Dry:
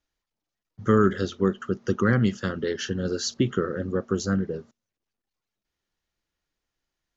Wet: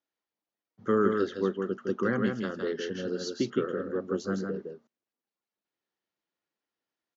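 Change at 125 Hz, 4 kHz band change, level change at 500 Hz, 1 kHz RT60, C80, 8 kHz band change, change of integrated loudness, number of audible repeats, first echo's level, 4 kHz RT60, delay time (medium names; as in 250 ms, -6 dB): -12.0 dB, -7.5 dB, -2.5 dB, no reverb, no reverb, no reading, -5.0 dB, 1, -4.5 dB, no reverb, 161 ms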